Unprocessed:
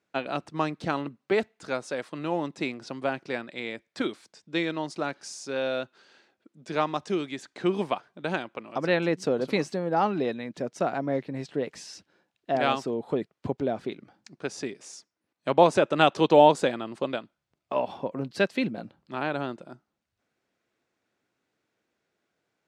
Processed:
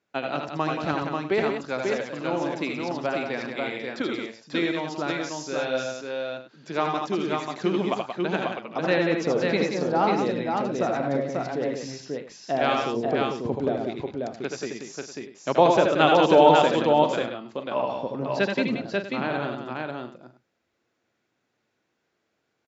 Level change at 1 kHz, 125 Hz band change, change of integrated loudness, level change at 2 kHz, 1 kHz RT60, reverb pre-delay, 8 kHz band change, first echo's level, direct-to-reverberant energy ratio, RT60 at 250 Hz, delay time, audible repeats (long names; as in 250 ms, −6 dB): +3.5 dB, +3.0 dB, +3.0 dB, +3.5 dB, no reverb audible, no reverb audible, +2.5 dB, −5.0 dB, no reverb audible, no reverb audible, 77 ms, 5